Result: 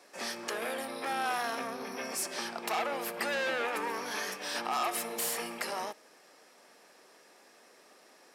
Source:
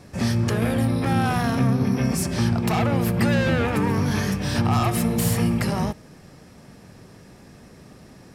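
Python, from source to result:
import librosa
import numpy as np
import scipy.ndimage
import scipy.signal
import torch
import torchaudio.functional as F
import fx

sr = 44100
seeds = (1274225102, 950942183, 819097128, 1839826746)

y = scipy.signal.sosfilt(scipy.signal.bessel(4, 570.0, 'highpass', norm='mag', fs=sr, output='sos'), x)
y = y * 10.0 ** (-5.0 / 20.0)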